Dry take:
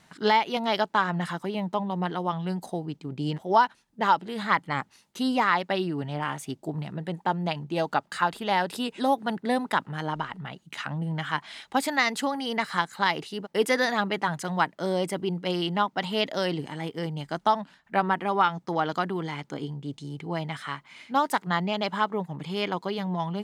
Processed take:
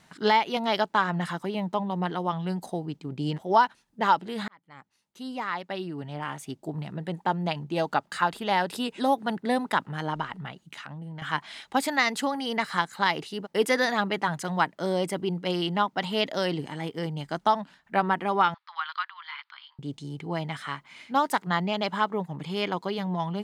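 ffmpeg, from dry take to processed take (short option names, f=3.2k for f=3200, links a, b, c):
-filter_complex "[0:a]asettb=1/sr,asplit=3[a][b][c];[a]atrim=end=10.504[d];[b]atrim=start=10.5:end=11.22,asetpts=PTS-STARTPTS,afade=t=in:d=0.004:c=qsin,afade=t=out:st=0.716:d=0.004:c=qsin,acompressor=threshold=-39dB:ratio=3:attack=3.2:release=140:knee=1:detection=peak[e];[c]atrim=start=11.216[f];[d][e]acrossfade=d=0.004:c1=hsin:c2=qsin[g];[g][f]acrossfade=d=0.004:c1=qsin:c2=hsin,asettb=1/sr,asplit=3[h][i][j];[h]atrim=end=18.544[k];[i]atrim=start=18.54:end=19.79,asetpts=PTS-STARTPTS,afade=t=in:d=0.004:c=qsin,afade=t=out:st=1.246:d=0.004:c=qsin,asuperpass=centerf=2200:order=12:qfactor=0.62[l];[j]atrim=start=19.786[m];[k][l]acrossfade=d=0.004:c1=hsin:c2=qsin[n];[n][m]acrossfade=d=0.004:c1=qsin:c2=hsin,asplit=2[o][p];[o]atrim=end=4.48,asetpts=PTS-STARTPTS,afade=t=out:st=4.476:d=0.004:c=hsin[q];[p]atrim=start=4.48,asetpts=PTS-STARTPTS,afade=t=in:d=2.69[r];[q][r]concat=n=2:v=0:a=1"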